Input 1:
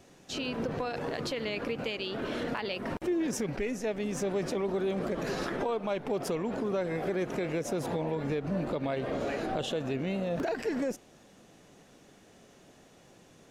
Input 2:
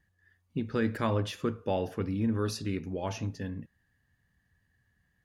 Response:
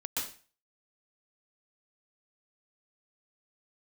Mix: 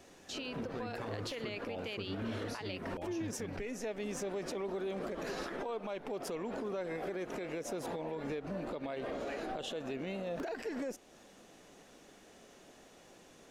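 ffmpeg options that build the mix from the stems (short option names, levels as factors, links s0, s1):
-filter_complex "[0:a]equalizer=f=120:w=0.98:g=-9.5,volume=1.06[s0];[1:a]alimiter=limit=0.0708:level=0:latency=1,volume=0.708[s1];[s0][s1]amix=inputs=2:normalize=0,alimiter=level_in=2.11:limit=0.0631:level=0:latency=1:release=279,volume=0.473"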